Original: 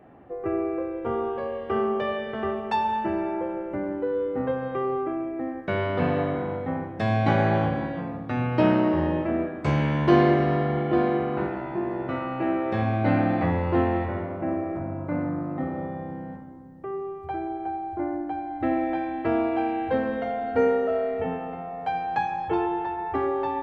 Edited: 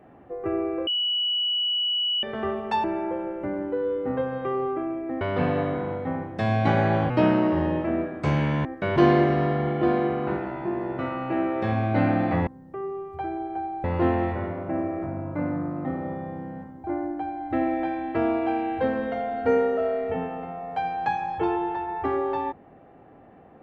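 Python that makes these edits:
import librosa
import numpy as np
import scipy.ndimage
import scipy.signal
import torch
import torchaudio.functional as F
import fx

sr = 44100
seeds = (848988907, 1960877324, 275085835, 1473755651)

y = fx.edit(x, sr, fx.bleep(start_s=0.87, length_s=1.36, hz=2940.0, db=-22.0),
    fx.cut(start_s=2.84, length_s=0.3),
    fx.move(start_s=5.51, length_s=0.31, to_s=10.06),
    fx.cut(start_s=7.71, length_s=0.8),
    fx.move(start_s=16.57, length_s=1.37, to_s=13.57), tone=tone)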